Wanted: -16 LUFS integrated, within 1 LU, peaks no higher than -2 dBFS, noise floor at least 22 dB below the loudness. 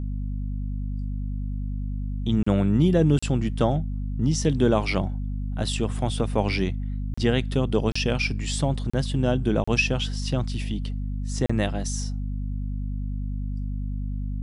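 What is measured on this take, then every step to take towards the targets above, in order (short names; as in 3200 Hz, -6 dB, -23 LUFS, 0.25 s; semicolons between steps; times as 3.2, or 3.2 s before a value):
dropouts 7; longest dropout 35 ms; hum 50 Hz; harmonics up to 250 Hz; hum level -26 dBFS; loudness -26.0 LUFS; peak -7.5 dBFS; loudness target -16.0 LUFS
-> interpolate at 2.43/3.19/7.14/7.92/8.9/9.64/11.46, 35 ms; notches 50/100/150/200/250 Hz; gain +10 dB; limiter -2 dBFS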